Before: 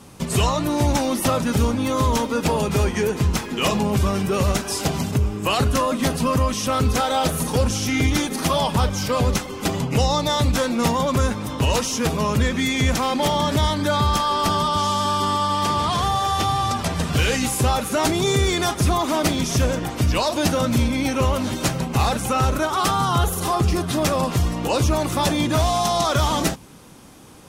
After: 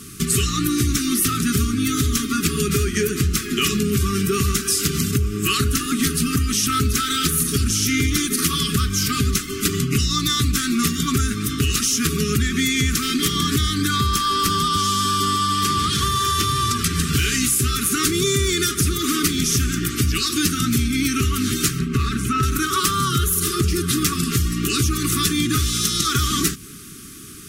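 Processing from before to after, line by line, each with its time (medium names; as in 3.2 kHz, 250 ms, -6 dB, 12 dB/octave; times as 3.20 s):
21.79–22.43 s: low-pass 1.8 kHz 6 dB/octave
whole clip: FFT band-reject 440–1100 Hz; treble shelf 6.1 kHz +11 dB; compression 4:1, threshold -22 dBFS; trim +5 dB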